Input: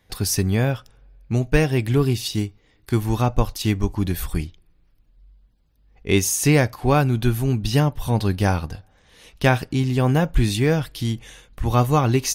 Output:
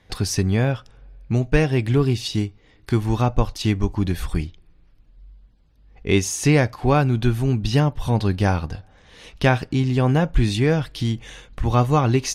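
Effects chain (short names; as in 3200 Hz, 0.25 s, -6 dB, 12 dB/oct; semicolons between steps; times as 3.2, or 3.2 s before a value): in parallel at +1 dB: compressor, threshold -32 dBFS, peak gain reduction 19.5 dB; on the sum: air absorption 57 m; gain -1 dB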